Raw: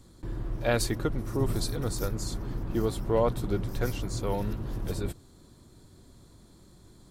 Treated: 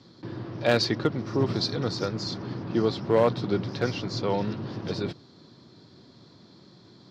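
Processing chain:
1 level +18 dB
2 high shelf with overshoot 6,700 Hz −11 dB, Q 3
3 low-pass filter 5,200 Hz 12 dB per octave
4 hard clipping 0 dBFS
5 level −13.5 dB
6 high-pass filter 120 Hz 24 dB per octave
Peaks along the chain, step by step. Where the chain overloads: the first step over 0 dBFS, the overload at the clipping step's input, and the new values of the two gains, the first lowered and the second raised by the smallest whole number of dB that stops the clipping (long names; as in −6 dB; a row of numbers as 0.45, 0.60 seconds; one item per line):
+6.5, +6.5, +6.5, 0.0, −13.5, −7.5 dBFS
step 1, 6.5 dB
step 1 +11 dB, step 5 −6.5 dB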